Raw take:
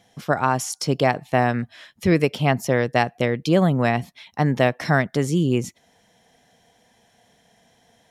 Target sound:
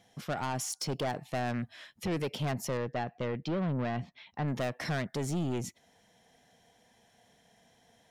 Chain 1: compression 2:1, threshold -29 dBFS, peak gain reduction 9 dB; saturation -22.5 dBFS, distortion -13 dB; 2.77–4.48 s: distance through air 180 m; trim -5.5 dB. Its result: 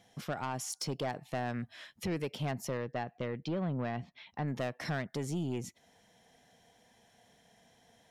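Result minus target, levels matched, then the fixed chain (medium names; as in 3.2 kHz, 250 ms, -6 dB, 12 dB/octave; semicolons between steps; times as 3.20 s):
compression: peak gain reduction +6 dB
compression 2:1, threshold -17 dBFS, peak gain reduction 3 dB; saturation -22.5 dBFS, distortion -8 dB; 2.77–4.48 s: distance through air 180 m; trim -5.5 dB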